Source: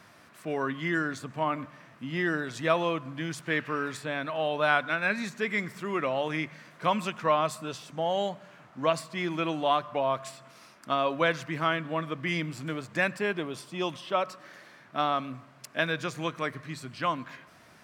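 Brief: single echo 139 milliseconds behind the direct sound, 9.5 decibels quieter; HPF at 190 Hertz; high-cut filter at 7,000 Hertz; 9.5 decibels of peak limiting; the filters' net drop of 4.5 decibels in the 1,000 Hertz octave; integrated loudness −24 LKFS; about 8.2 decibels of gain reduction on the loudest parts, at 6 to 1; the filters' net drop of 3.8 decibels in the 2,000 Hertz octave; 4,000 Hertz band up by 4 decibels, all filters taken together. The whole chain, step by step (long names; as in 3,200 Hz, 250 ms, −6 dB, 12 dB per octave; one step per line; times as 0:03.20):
high-pass filter 190 Hz
low-pass filter 7,000 Hz
parametric band 1,000 Hz −5 dB
parametric band 2,000 Hz −5 dB
parametric band 4,000 Hz +8 dB
downward compressor 6 to 1, threshold −31 dBFS
brickwall limiter −26.5 dBFS
single-tap delay 139 ms −9.5 dB
level +14 dB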